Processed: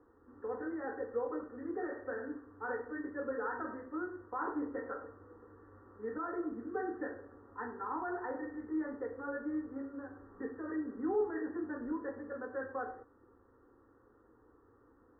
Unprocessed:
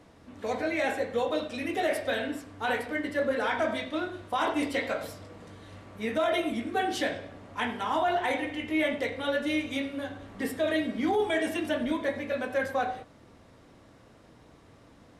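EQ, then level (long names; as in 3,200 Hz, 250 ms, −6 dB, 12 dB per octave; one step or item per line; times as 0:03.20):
Chebyshev low-pass with heavy ripple 1,900 Hz, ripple 6 dB
phaser with its sweep stopped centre 630 Hz, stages 6
−3.0 dB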